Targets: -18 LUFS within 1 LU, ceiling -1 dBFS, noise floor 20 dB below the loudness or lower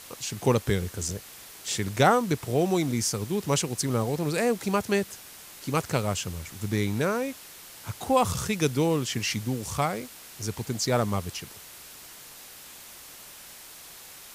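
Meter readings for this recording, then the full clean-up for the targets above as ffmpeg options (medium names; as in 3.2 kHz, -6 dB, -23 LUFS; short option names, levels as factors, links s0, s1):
noise floor -46 dBFS; noise floor target -48 dBFS; loudness -27.5 LUFS; peak level -7.5 dBFS; loudness target -18.0 LUFS
-> -af "afftdn=nr=6:nf=-46"
-af "volume=2.99,alimiter=limit=0.891:level=0:latency=1"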